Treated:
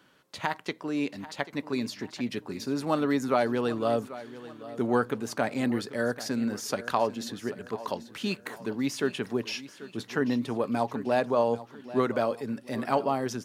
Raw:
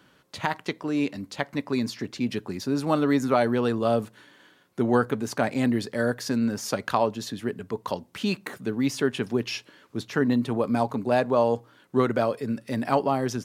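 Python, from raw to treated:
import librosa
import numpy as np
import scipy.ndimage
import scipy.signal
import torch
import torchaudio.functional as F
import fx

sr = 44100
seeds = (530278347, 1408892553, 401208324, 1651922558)

p1 = fx.low_shelf(x, sr, hz=150.0, db=-7.5)
p2 = p1 + fx.echo_feedback(p1, sr, ms=788, feedback_pct=45, wet_db=-16, dry=0)
y = p2 * 10.0 ** (-2.5 / 20.0)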